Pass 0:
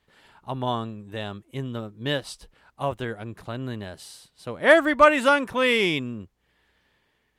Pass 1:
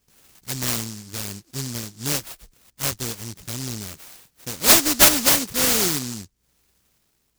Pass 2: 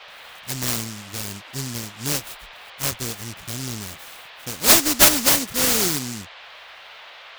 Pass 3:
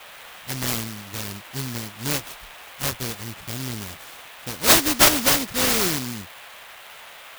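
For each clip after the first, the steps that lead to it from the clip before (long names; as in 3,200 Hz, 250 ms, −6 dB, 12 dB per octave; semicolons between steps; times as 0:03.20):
short delay modulated by noise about 5,900 Hz, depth 0.46 ms; level +1.5 dB
noise in a band 530–3,700 Hz −43 dBFS
converter with an unsteady clock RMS 0.033 ms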